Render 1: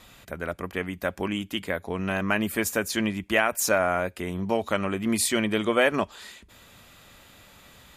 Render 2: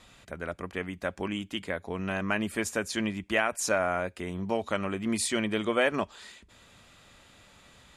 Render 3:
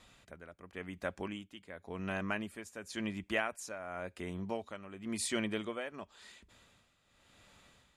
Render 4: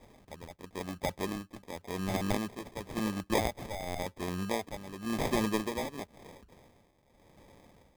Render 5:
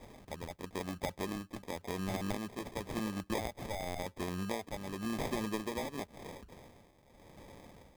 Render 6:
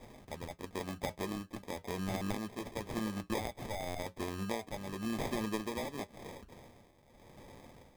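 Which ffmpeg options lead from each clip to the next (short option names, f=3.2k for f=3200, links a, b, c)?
-af "lowpass=f=10k:w=0.5412,lowpass=f=10k:w=1.3066,volume=-4dB"
-af "tremolo=f=0.93:d=0.76,volume=-5.5dB"
-af "acrusher=samples=31:mix=1:aa=0.000001,volume=5dB"
-af "acompressor=threshold=-40dB:ratio=3,volume=4dB"
-af "flanger=delay=8:depth=1.3:regen=-66:speed=0.26:shape=triangular,volume=4dB"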